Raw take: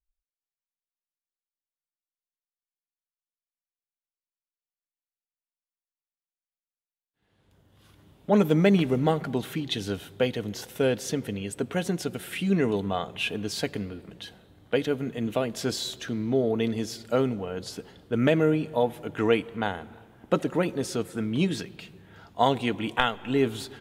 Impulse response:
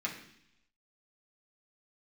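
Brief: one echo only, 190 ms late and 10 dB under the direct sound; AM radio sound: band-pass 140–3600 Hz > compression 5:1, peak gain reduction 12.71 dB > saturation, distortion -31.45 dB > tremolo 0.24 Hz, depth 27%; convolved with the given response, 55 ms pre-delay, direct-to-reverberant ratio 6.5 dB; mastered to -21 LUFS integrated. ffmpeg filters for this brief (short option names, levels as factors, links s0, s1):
-filter_complex "[0:a]aecho=1:1:190:0.316,asplit=2[s0][s1];[1:a]atrim=start_sample=2205,adelay=55[s2];[s1][s2]afir=irnorm=-1:irlink=0,volume=0.299[s3];[s0][s3]amix=inputs=2:normalize=0,highpass=140,lowpass=3600,acompressor=threshold=0.0398:ratio=5,asoftclip=threshold=0.2,tremolo=f=0.24:d=0.27,volume=4.73"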